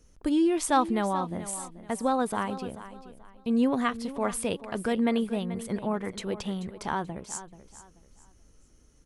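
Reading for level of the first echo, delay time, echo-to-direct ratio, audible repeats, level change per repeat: -14.0 dB, 434 ms, -13.5 dB, 3, -10.5 dB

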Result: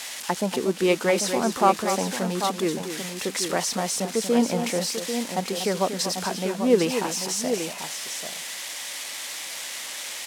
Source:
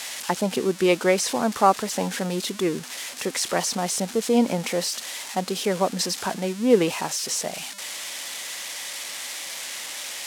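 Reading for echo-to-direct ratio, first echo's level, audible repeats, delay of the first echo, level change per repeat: -5.5 dB, -9.5 dB, 2, 239 ms, no regular repeats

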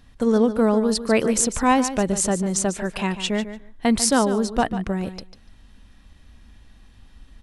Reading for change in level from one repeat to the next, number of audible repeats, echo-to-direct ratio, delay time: -16.5 dB, 2, -12.0 dB, 146 ms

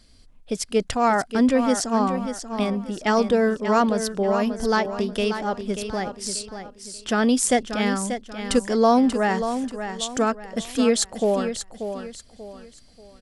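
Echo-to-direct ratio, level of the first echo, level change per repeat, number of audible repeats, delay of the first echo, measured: -8.5 dB, -9.0 dB, -9.5 dB, 3, 586 ms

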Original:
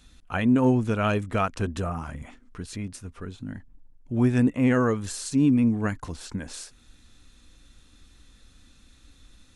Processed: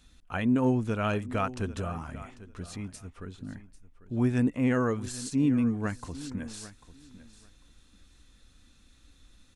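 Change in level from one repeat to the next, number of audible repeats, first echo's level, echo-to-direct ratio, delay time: -15.0 dB, 2, -16.5 dB, -16.5 dB, 795 ms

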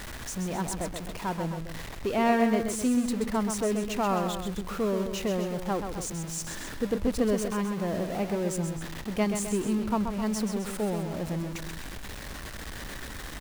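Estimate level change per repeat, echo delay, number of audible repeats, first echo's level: -4.5 dB, 130 ms, 2, -7.0 dB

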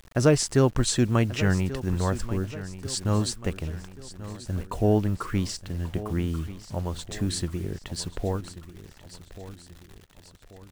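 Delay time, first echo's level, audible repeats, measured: 1136 ms, -14.5 dB, 3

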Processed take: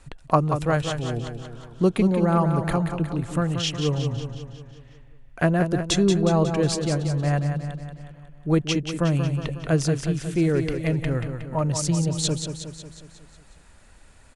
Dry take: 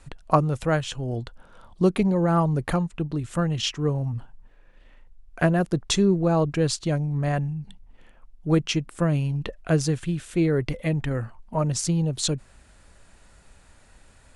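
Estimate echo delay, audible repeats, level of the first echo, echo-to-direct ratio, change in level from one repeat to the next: 182 ms, 6, -7.5 dB, -6.0 dB, -5.0 dB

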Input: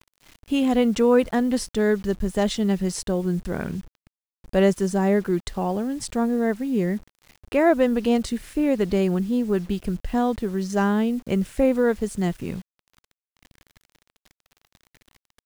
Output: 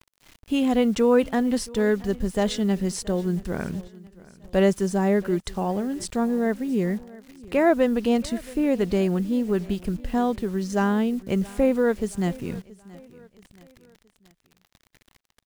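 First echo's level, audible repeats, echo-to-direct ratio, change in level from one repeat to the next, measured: -21.0 dB, 2, -20.0 dB, -7.0 dB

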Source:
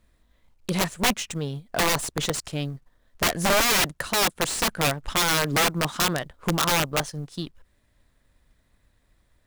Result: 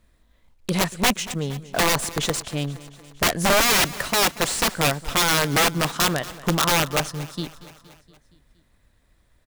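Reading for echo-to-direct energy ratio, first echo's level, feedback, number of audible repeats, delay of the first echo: -16.0 dB, -18.0 dB, 60%, 4, 234 ms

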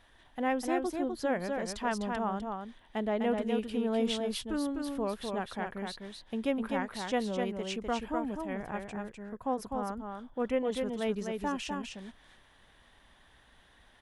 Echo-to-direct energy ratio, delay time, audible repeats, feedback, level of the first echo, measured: -4.5 dB, 252 ms, 1, no regular repeats, -4.5 dB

